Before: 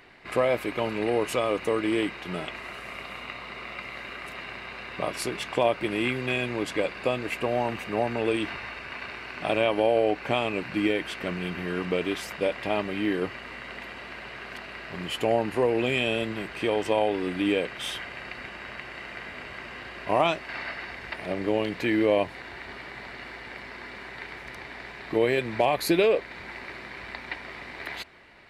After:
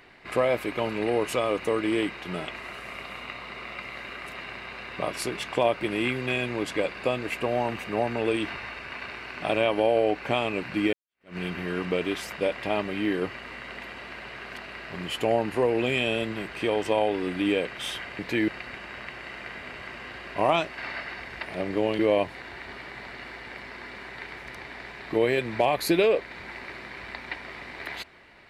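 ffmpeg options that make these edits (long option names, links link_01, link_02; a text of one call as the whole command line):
ffmpeg -i in.wav -filter_complex "[0:a]asplit=5[link_01][link_02][link_03][link_04][link_05];[link_01]atrim=end=10.93,asetpts=PTS-STARTPTS,afade=type=out:start_time=10.926:duration=0.004:curve=hsin[link_06];[link_02]atrim=start=10.93:end=18.192,asetpts=PTS-STARTPTS,afade=type=in:duration=0.44:curve=exp[link_07];[link_03]atrim=start=21.698:end=21.992[link_08];[link_04]atrim=start=18.188:end=21.702[link_09];[link_05]atrim=start=21.988[link_10];[link_06][link_07]concat=n=2:v=0:a=1[link_11];[link_11][link_08]acrossfade=duration=0.004:curve1=hsin:curve2=hsin[link_12];[link_12][link_09]acrossfade=duration=0.004:curve1=hsin:curve2=hsin[link_13];[link_13][link_10]acrossfade=duration=0.004:curve1=hsin:curve2=hsin" out.wav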